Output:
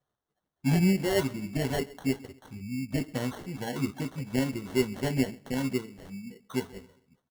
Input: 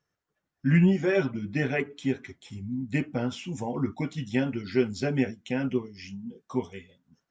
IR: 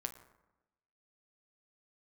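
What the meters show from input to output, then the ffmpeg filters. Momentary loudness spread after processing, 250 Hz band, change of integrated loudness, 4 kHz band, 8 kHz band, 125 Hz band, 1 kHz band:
17 LU, −2.0 dB, −2.0 dB, +3.5 dB, can't be measured, −2.5 dB, 0.0 dB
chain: -filter_complex "[0:a]asplit=2[link_01][link_02];[link_02]adelay=15,volume=-11.5dB[link_03];[link_01][link_03]amix=inputs=2:normalize=0,aecho=1:1:133|266|399:0.0668|0.0294|0.0129,acrusher=samples=18:mix=1:aa=0.000001,volume=-2.5dB"

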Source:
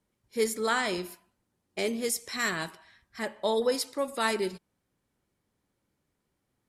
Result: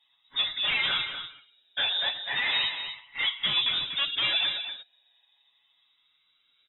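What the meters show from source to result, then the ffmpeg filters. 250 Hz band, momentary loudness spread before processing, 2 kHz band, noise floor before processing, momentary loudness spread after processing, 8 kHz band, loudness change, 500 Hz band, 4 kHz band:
−17.0 dB, 13 LU, +4.5 dB, −80 dBFS, 12 LU, below −40 dB, +3.5 dB, −18.0 dB, +14.0 dB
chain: -af "afftfilt=real='re*pow(10,13/40*sin(2*PI*(1.7*log(max(b,1)*sr/1024/100)/log(2)-(-0.36)*(pts-256)/sr)))':imag='im*pow(10,13/40*sin(2*PI*(1.7*log(max(b,1)*sr/1024/100)/log(2)-(-0.36)*(pts-256)/sr)))':win_size=1024:overlap=0.75,aecho=1:1:7.2:0.91,alimiter=limit=-19.5dB:level=0:latency=1:release=47,aresample=16000,aeval=exprs='0.112*sin(PI/2*2.24*val(0)/0.112)':channel_layout=same,aresample=44100,flanger=delay=4.8:depth=5.3:regen=46:speed=1.5:shape=triangular,aecho=1:1:241:0.355,lowpass=frequency=3300:width_type=q:width=0.5098,lowpass=frequency=3300:width_type=q:width=0.6013,lowpass=frequency=3300:width_type=q:width=0.9,lowpass=frequency=3300:width_type=q:width=2.563,afreqshift=-3900"

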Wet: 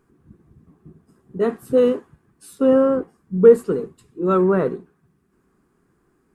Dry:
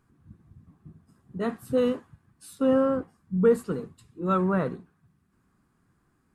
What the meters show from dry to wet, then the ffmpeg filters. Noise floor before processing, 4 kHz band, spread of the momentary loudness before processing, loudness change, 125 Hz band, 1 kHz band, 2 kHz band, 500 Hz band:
−70 dBFS, can't be measured, 13 LU, +8.0 dB, +3.0 dB, +4.0 dB, +3.5 dB, +9.5 dB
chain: -af "equalizer=frequency=100:width_type=o:width=0.67:gain=-7,equalizer=frequency=400:width_type=o:width=0.67:gain=10,equalizer=frequency=4000:width_type=o:width=0.67:gain=-3,volume=3.5dB"

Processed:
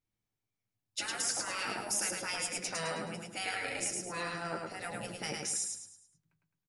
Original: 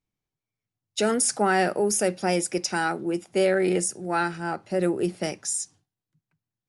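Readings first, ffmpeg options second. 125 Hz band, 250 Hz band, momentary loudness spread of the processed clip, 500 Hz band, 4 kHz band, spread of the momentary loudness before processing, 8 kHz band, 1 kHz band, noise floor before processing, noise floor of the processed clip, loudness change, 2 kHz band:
−13.5 dB, −18.5 dB, 8 LU, −18.0 dB, −3.5 dB, 8 LU, −6.0 dB, −12.5 dB, below −85 dBFS, below −85 dBFS, −10.5 dB, −7.5 dB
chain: -af "afftfilt=real='re*lt(hypot(re,im),0.141)':imag='im*lt(hypot(re,im),0.141)':win_size=1024:overlap=0.75,flanger=delay=8.7:depth=1.7:regen=-43:speed=0.54:shape=sinusoidal,aecho=1:1:106|212|318|424|530:0.708|0.269|0.102|0.0388|0.0148,adynamicequalizer=threshold=0.00447:dfrequency=7500:dqfactor=0.7:tfrequency=7500:tqfactor=0.7:attack=5:release=100:ratio=0.375:range=2:mode=cutabove:tftype=highshelf"

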